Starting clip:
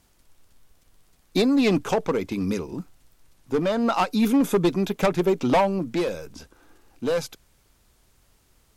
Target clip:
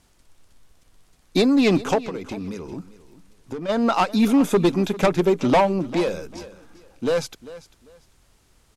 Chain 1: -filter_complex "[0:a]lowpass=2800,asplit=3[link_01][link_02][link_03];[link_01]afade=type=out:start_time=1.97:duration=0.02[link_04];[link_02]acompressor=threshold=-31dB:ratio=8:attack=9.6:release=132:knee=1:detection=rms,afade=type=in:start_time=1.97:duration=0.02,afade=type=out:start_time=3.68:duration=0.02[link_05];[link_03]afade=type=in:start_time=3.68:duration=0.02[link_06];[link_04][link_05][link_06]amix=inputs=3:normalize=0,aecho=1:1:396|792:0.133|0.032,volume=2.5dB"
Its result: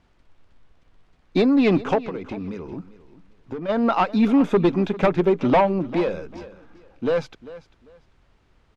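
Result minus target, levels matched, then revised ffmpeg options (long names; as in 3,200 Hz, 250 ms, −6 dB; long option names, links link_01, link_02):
8,000 Hz band −16.0 dB
-filter_complex "[0:a]lowpass=11000,asplit=3[link_01][link_02][link_03];[link_01]afade=type=out:start_time=1.97:duration=0.02[link_04];[link_02]acompressor=threshold=-31dB:ratio=8:attack=9.6:release=132:knee=1:detection=rms,afade=type=in:start_time=1.97:duration=0.02,afade=type=out:start_time=3.68:duration=0.02[link_05];[link_03]afade=type=in:start_time=3.68:duration=0.02[link_06];[link_04][link_05][link_06]amix=inputs=3:normalize=0,aecho=1:1:396|792:0.133|0.032,volume=2.5dB"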